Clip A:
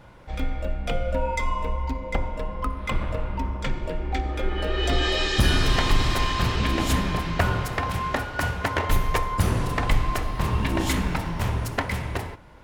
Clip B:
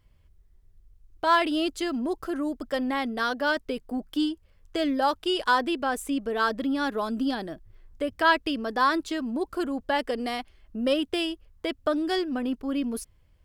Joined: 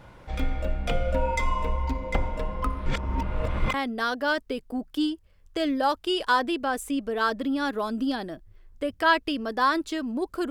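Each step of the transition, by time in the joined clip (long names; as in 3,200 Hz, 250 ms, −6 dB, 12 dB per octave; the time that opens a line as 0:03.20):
clip A
0:02.86–0:03.74: reverse
0:03.74: continue with clip B from 0:02.93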